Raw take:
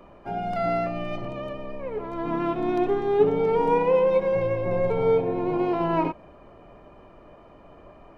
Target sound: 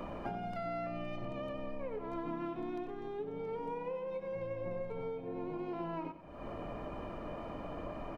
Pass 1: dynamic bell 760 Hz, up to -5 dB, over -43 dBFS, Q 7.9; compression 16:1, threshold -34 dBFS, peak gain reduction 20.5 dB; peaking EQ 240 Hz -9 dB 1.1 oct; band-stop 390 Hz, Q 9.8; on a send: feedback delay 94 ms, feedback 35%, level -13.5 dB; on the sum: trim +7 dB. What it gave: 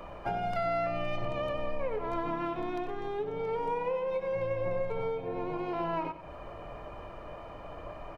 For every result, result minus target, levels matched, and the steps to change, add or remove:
compression: peak gain reduction -10 dB; 250 Hz band -5.5 dB
change: compression 16:1, threshold -44.5 dBFS, peak gain reduction 30.5 dB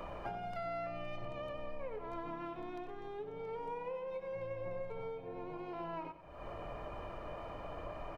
250 Hz band -4.5 dB
change: peaking EQ 240 Hz +2.5 dB 1.1 oct

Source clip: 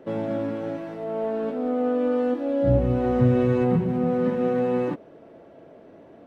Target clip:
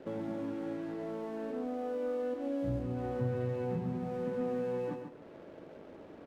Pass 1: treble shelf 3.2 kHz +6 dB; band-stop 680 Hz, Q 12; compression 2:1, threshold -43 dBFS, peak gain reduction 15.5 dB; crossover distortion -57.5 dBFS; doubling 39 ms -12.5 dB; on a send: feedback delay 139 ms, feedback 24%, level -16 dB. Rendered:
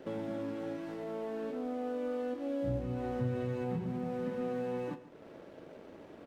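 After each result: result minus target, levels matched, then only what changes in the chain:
echo-to-direct -10 dB; 4 kHz band +3.5 dB
change: feedback delay 139 ms, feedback 24%, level -6 dB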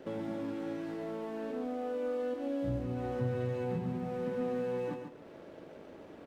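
4 kHz band +3.5 dB
change: treble shelf 3.2 kHz -5.5 dB

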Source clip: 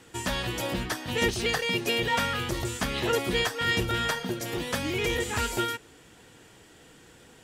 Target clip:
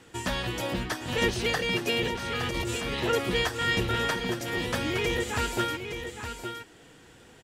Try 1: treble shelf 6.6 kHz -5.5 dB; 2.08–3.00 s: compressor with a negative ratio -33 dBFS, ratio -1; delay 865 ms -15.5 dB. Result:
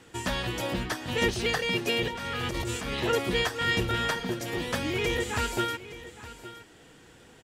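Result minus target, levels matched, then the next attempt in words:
echo-to-direct -7.5 dB
treble shelf 6.6 kHz -5.5 dB; 2.08–3.00 s: compressor with a negative ratio -33 dBFS, ratio -1; delay 865 ms -8 dB

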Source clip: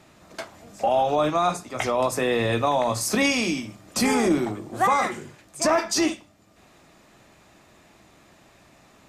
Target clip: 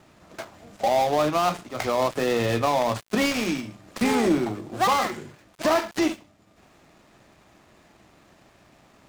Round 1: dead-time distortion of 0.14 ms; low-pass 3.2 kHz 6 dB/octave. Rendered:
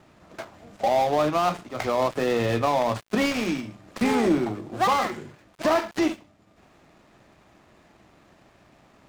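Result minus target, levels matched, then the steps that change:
8 kHz band -4.0 dB
change: low-pass 6.8 kHz 6 dB/octave

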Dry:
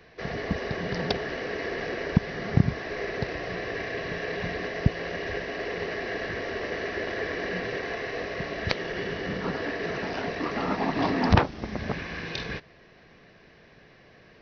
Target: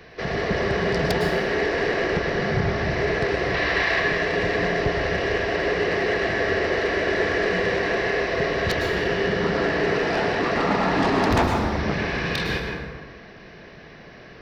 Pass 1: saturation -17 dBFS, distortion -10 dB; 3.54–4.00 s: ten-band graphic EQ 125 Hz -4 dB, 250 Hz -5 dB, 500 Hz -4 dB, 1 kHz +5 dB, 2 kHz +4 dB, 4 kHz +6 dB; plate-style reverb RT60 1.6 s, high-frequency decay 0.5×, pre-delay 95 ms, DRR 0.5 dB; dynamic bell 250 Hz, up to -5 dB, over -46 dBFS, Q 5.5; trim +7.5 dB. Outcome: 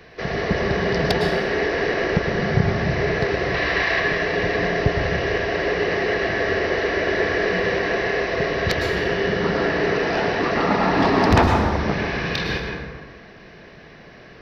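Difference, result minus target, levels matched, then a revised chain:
saturation: distortion -4 dB
saturation -25.5 dBFS, distortion -6 dB; 3.54–4.00 s: ten-band graphic EQ 125 Hz -4 dB, 250 Hz -5 dB, 500 Hz -4 dB, 1 kHz +5 dB, 2 kHz +4 dB, 4 kHz +6 dB; plate-style reverb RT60 1.6 s, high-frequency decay 0.5×, pre-delay 95 ms, DRR 0.5 dB; dynamic bell 250 Hz, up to -5 dB, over -46 dBFS, Q 5.5; trim +7.5 dB

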